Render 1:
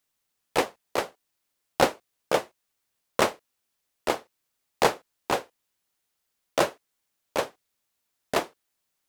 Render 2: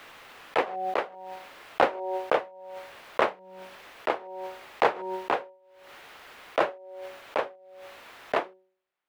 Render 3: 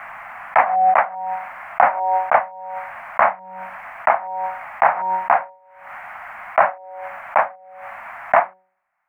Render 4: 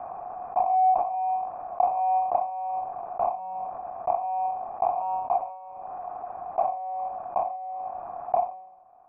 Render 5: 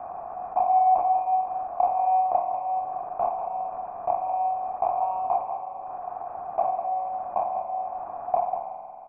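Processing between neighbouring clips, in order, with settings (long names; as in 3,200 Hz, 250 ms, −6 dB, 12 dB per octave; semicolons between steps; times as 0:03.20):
three-way crossover with the lows and the highs turned down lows −12 dB, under 360 Hz, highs −24 dB, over 3,000 Hz; hum removal 187 Hz, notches 5; background raised ahead of every attack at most 41 dB per second
drawn EQ curve 220 Hz 0 dB, 410 Hz −24 dB, 690 Hz +10 dB, 2,200 Hz +6 dB, 3,700 Hz −25 dB, 8,500 Hz −11 dB; boost into a limiter +8.5 dB; level −1 dB
running median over 41 samples; formant resonators in series a; envelope flattener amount 50%
single-tap delay 194 ms −9 dB; spring reverb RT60 2.6 s, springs 45 ms, chirp 45 ms, DRR 5.5 dB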